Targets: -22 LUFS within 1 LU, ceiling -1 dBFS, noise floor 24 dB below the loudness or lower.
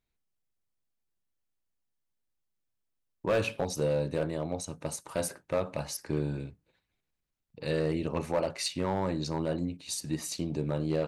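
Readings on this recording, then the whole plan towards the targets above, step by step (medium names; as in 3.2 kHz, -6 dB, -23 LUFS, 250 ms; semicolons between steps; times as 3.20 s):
clipped samples 0.5%; clipping level -21.0 dBFS; loudness -32.5 LUFS; peak level -21.0 dBFS; loudness target -22.0 LUFS
-> clip repair -21 dBFS; trim +10.5 dB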